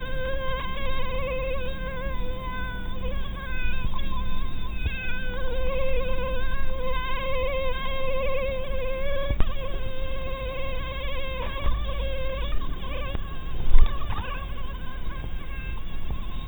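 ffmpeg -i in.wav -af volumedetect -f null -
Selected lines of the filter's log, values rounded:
mean_volume: -22.7 dB
max_volume: -1.7 dB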